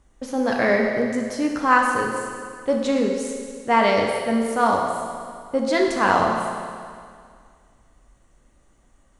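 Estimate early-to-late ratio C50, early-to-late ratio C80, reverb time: 2.5 dB, 4.0 dB, 2.1 s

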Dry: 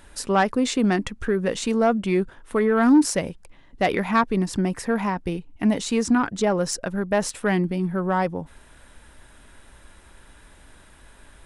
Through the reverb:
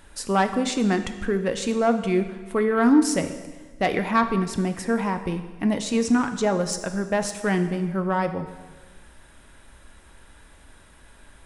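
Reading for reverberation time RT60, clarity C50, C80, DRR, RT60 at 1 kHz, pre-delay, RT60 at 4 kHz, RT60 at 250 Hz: 1.3 s, 10.0 dB, 11.5 dB, 8.0 dB, 1.3 s, 3 ms, 1.3 s, 1.4 s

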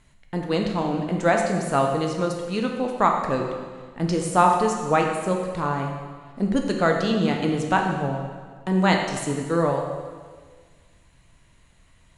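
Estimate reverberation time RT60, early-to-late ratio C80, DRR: 1.6 s, 5.5 dB, 1.5 dB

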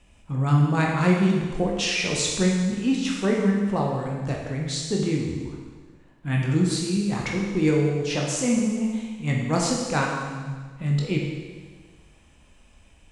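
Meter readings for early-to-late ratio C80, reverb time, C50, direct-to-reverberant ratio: 3.5 dB, 1.5 s, 1.5 dB, -1.5 dB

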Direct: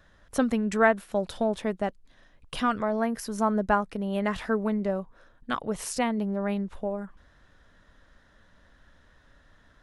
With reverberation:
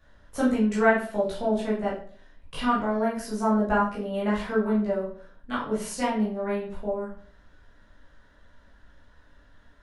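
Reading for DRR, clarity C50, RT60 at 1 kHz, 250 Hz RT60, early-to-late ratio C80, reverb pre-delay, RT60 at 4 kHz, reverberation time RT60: -8.0 dB, 5.0 dB, 0.45 s, 0.55 s, 10.0 dB, 13 ms, 0.40 s, 0.50 s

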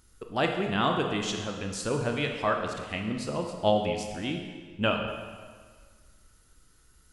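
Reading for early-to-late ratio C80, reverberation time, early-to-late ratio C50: 6.0 dB, 1.7 s, 4.5 dB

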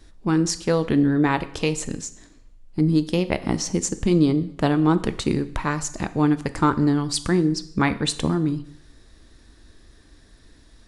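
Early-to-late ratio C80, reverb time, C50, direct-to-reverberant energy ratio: 18.5 dB, 0.70 s, 16.0 dB, 11.5 dB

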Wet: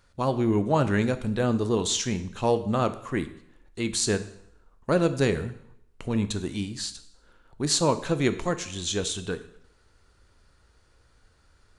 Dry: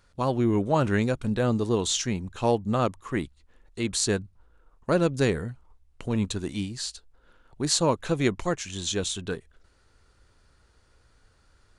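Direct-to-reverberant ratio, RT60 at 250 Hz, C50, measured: 10.5 dB, 0.75 s, 14.0 dB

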